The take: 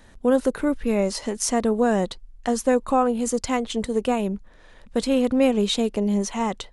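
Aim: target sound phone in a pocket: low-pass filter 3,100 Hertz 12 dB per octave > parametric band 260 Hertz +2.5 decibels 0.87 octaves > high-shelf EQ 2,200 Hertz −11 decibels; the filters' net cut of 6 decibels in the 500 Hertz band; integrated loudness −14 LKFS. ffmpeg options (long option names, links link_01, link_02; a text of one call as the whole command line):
ffmpeg -i in.wav -af "lowpass=3100,equalizer=frequency=260:width_type=o:width=0.87:gain=2.5,equalizer=frequency=500:width_type=o:gain=-6.5,highshelf=frequency=2200:gain=-11,volume=11dB" out.wav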